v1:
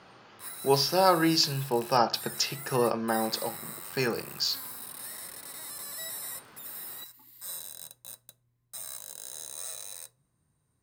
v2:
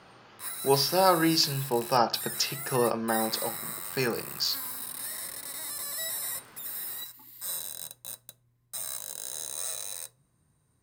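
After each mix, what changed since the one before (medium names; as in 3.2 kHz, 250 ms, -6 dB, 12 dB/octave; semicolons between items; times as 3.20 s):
background +4.5 dB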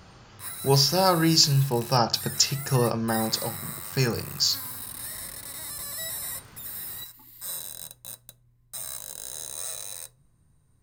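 speech: remove band-pass 260–3900 Hz; background: remove high-pass 200 Hz 6 dB/octave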